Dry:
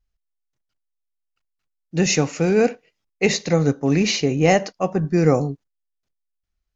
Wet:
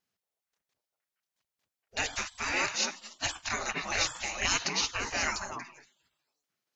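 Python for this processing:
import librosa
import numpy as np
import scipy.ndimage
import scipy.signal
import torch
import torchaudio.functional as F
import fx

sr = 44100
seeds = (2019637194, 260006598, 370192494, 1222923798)

y = fx.echo_stepped(x, sr, ms=233, hz=640.0, octaves=1.4, feedback_pct=70, wet_db=-0.5)
y = fx.spec_gate(y, sr, threshold_db=-25, keep='weak')
y = F.gain(torch.from_numpy(y), 4.0).numpy()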